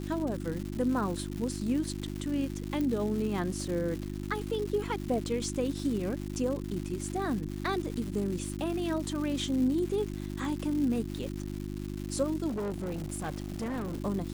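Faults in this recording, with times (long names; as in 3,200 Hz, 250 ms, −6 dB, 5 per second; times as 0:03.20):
surface crackle 320 per second −36 dBFS
mains hum 50 Hz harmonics 7 −37 dBFS
0:02.81: click
0:12.48–0:13.98: clipping −30 dBFS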